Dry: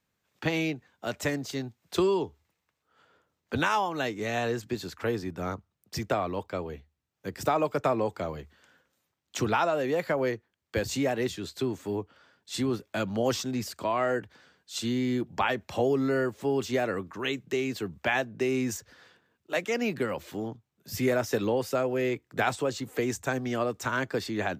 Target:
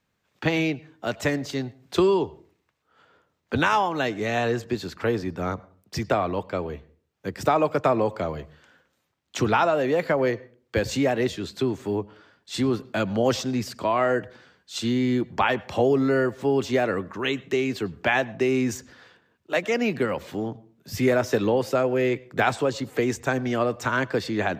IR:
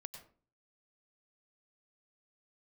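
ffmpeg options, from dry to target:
-filter_complex "[0:a]highshelf=frequency=8300:gain=-7,asplit=2[link_01][link_02];[1:a]atrim=start_sample=2205,lowpass=6100[link_03];[link_02][link_03]afir=irnorm=-1:irlink=0,volume=-8.5dB[link_04];[link_01][link_04]amix=inputs=2:normalize=0,volume=3.5dB"

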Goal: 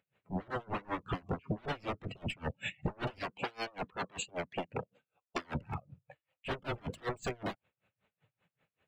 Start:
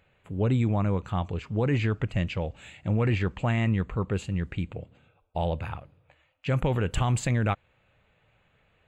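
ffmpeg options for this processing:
ffmpeg -i in.wav -filter_complex "[0:a]aeval=exprs='0.178*(cos(1*acos(clip(val(0)/0.178,-1,1)))-cos(1*PI/2))+0.0158*(cos(4*acos(clip(val(0)/0.178,-1,1)))-cos(4*PI/2))+0.0631*(cos(5*acos(clip(val(0)/0.178,-1,1)))-cos(5*PI/2))+0.0562*(cos(6*acos(clip(val(0)/0.178,-1,1)))-cos(6*PI/2))':channel_layout=same,highpass=160,bass=frequency=250:gain=4,treble=frequency=4000:gain=0,aeval=exprs='0.0531*(abs(mod(val(0)/0.0531+3,4)-2)-1)':channel_layout=same,asettb=1/sr,asplit=3[link_01][link_02][link_03];[link_01]atrim=end=3.194[link_04];[link_02]atrim=start=3.19:end=5.55,asetpts=PTS-STARTPTS,afade=type=in:duration=0.004:curve=qsin,afade=type=out:start_time=2.356:duration=0.004:curve=qsin,lowshelf=frequency=270:gain=-11.5[link_05];[link_03]atrim=start=5.546[link_06];[link_04][link_05]acrossfade=duration=0.004:curve1=hsin:curve2=qsin[link_07];[link_07][link_06]acrossfade=duration=0.004:curve1=qsin:curve2=hsin,acompressor=threshold=-35dB:ratio=20,afftdn=noise_reduction=22:noise_floor=-41,aeval=exprs='val(0)*pow(10,-29*(0.5-0.5*cos(2*PI*5.2*n/s))/20)':channel_layout=same,volume=6.5dB" out.wav

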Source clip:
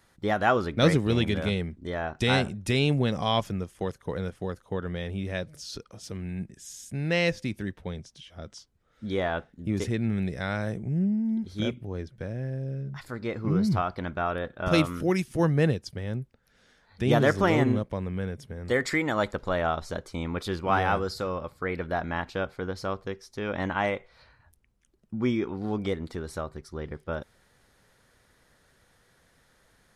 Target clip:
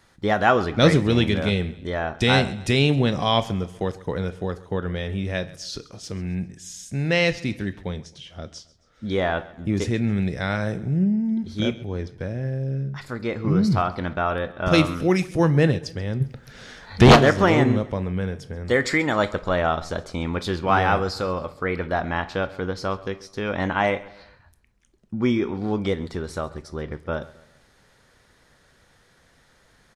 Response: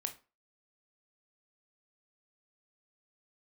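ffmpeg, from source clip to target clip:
-filter_complex "[0:a]asplit=3[link_01][link_02][link_03];[link_01]afade=type=out:start_time=16.2:duration=0.02[link_04];[link_02]aeval=exprs='0.316*sin(PI/2*3.16*val(0)/0.316)':channel_layout=same,afade=type=in:start_time=16.2:duration=0.02,afade=type=out:start_time=17.15:duration=0.02[link_05];[link_03]afade=type=in:start_time=17.15:duration=0.02[link_06];[link_04][link_05][link_06]amix=inputs=3:normalize=0,aecho=1:1:134|268|402:0.1|0.043|0.0185,asplit=2[link_07][link_08];[1:a]atrim=start_sample=2205,lowpass=7500,highshelf=frequency=4800:gain=6.5[link_09];[link_08][link_09]afir=irnorm=-1:irlink=0,volume=-1dB[link_10];[link_07][link_10]amix=inputs=2:normalize=0"

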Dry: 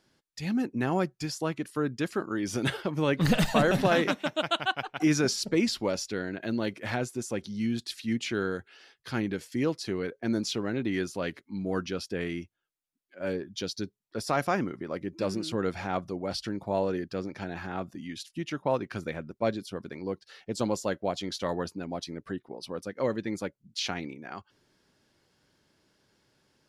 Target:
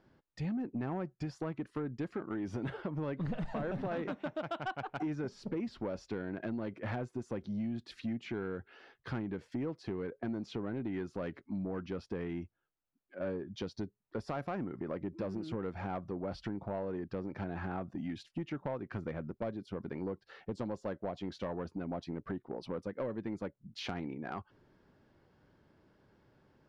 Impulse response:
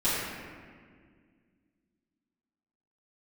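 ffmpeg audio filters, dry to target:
-af "deesser=0.7,lowpass=1200,lowshelf=frequency=130:gain=5,acompressor=threshold=-36dB:ratio=6,crystalizer=i=3.5:c=0,asoftclip=type=tanh:threshold=-31.5dB,volume=3dB"

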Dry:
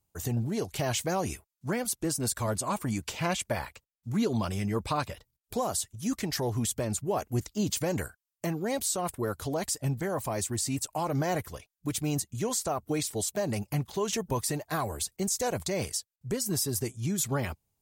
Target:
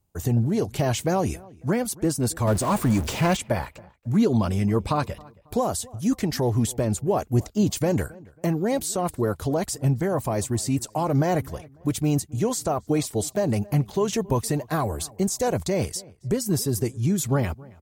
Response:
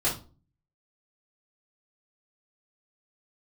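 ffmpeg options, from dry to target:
-filter_complex "[0:a]asettb=1/sr,asplit=3[link_01][link_02][link_03];[link_01]atrim=end=2.474[link_04];[link_02]atrim=start=2.47:end=3.37,asetpts=PTS-STARTPTS,afade=type=in:duration=0.004:curve=qsin,afade=type=out:start_time=0.896:duration=0.004:curve=qsin,aeval=exprs='val(0)+0.5*0.0251*sgn(val(0))':channel_layout=same[link_05];[link_03]atrim=start=3.366[link_06];[link_04][link_05]acrossfade=duration=0.004:curve1=hsin:curve2=qsin[link_07];[link_07][link_06]acrossfade=duration=0.004:curve1=qsin:curve2=hsin,tiltshelf=frequency=970:gain=4,asplit=2[link_08][link_09];[link_09]adelay=273,lowpass=frequency=2200:poles=1,volume=-22.5dB,asplit=2[link_10][link_11];[link_11]adelay=273,lowpass=frequency=2200:poles=1,volume=0.35[link_12];[link_08][link_10][link_12]amix=inputs=3:normalize=0,volume=4.5dB"

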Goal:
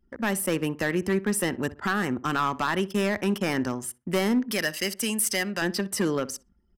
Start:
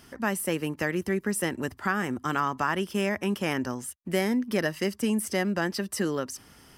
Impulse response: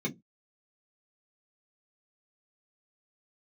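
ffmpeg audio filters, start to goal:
-filter_complex "[0:a]asettb=1/sr,asplit=3[link_01][link_02][link_03];[link_01]atrim=end=4.514[link_04];[link_02]atrim=start=4.51:end=5.62,asetpts=PTS-STARTPTS,afade=type=in:duration=0.004:curve=qsin,afade=type=out:start_time=1.106:duration=0.004:curve=qsin,tiltshelf=frequency=1500:gain=-7.5[link_05];[link_03]atrim=start=5.616[link_06];[link_04][link_05]acrossfade=duration=0.004:curve1=hsin:curve2=qsin[link_07];[link_07][link_06]acrossfade=duration=0.004:curve1=qsin:curve2=hsin,anlmdn=0.158,asoftclip=type=hard:threshold=-21dB,asplit=2[link_08][link_09];[link_09]adelay=62,lowpass=frequency=1500:poles=1,volume=-17dB,asplit=2[link_10][link_11];[link_11]adelay=62,lowpass=frequency=1500:poles=1,volume=0.33,asplit=2[link_12][link_13];[link_13]adelay=62,lowpass=frequency=1500:poles=1,volume=0.33[link_14];[link_08][link_10][link_12][link_14]amix=inputs=4:normalize=0,volume=3dB"

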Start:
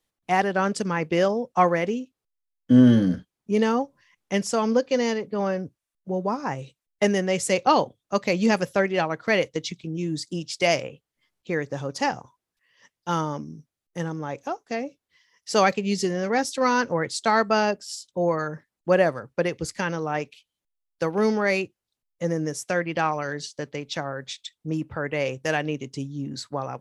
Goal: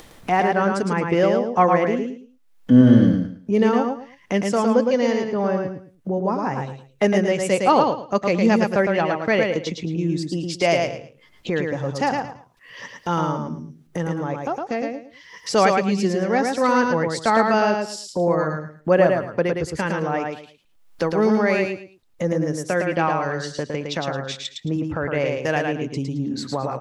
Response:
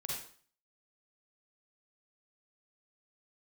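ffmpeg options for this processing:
-filter_complex "[0:a]highshelf=frequency=3000:gain=-9,acompressor=mode=upward:threshold=-24dB:ratio=2.5,asplit=2[link_01][link_02];[link_02]aecho=0:1:110|220|330:0.631|0.151|0.0363[link_03];[link_01][link_03]amix=inputs=2:normalize=0,volume=3dB"

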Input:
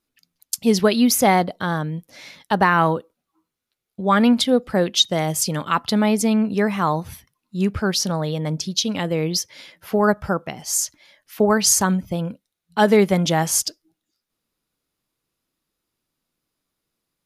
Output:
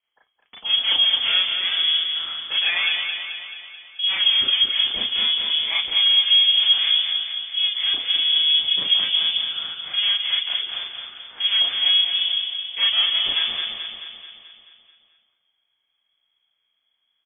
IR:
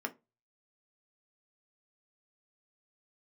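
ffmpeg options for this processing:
-filter_complex "[0:a]highpass=frequency=120:width=0.5412,highpass=frequency=120:width=1.3066,asubboost=boost=11:cutoff=160,acompressor=threshold=-14dB:ratio=6,aeval=exprs='(tanh(15.8*val(0)+0.4)-tanh(0.4))/15.8':channel_layout=same,aecho=1:1:217|434|651|868|1085|1302|1519|1736:0.501|0.291|0.169|0.0978|0.0567|0.0329|0.0191|0.0111,asplit=2[link_01][link_02];[1:a]atrim=start_sample=2205,adelay=34[link_03];[link_02][link_03]afir=irnorm=-1:irlink=0,volume=1dB[link_04];[link_01][link_04]amix=inputs=2:normalize=0,lowpass=frequency=3000:width_type=q:width=0.5098,lowpass=frequency=3000:width_type=q:width=0.6013,lowpass=frequency=3000:width_type=q:width=0.9,lowpass=frequency=3000:width_type=q:width=2.563,afreqshift=-3500"

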